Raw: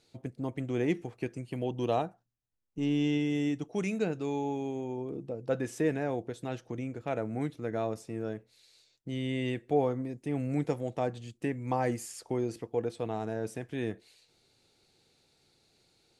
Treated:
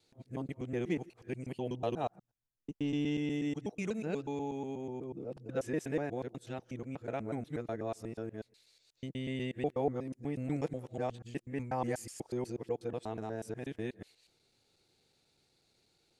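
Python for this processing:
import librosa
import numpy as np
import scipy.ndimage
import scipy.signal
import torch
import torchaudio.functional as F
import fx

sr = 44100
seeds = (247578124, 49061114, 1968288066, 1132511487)

y = fx.local_reverse(x, sr, ms=122.0)
y = y * 10.0 ** (-4.5 / 20.0)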